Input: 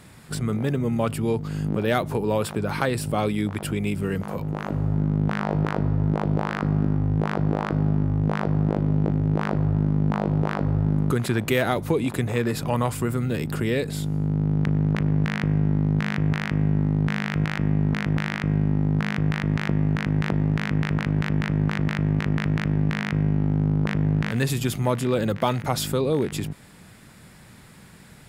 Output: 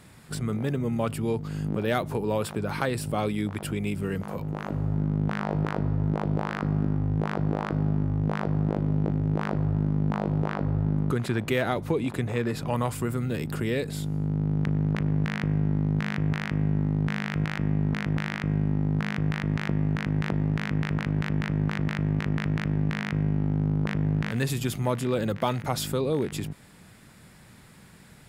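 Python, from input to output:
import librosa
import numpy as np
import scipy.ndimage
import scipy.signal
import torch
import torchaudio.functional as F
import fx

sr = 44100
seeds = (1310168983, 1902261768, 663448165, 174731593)

y = fx.high_shelf(x, sr, hz=7800.0, db=-8.5, at=(10.46, 12.7))
y = F.gain(torch.from_numpy(y), -3.5).numpy()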